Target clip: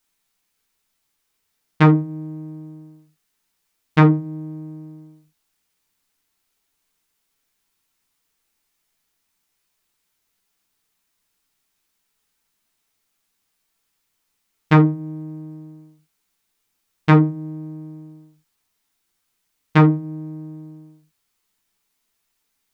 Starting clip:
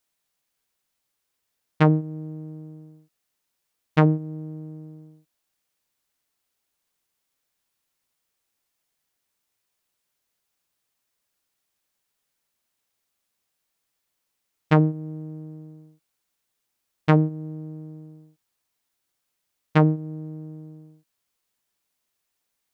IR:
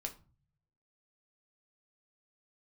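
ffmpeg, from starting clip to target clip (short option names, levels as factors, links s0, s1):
-filter_complex "[0:a]equalizer=f=570:w=4.3:g=-10[s0];[1:a]atrim=start_sample=2205,atrim=end_sample=3969[s1];[s0][s1]afir=irnorm=-1:irlink=0,volume=2.37"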